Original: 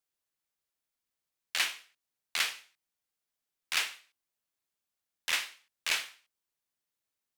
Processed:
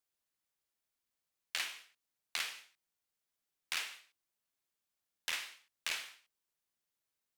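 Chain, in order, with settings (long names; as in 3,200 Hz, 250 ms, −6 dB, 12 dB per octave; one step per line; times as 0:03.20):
downward compressor 6 to 1, threshold −33 dBFS, peak gain reduction 9.5 dB
level −1 dB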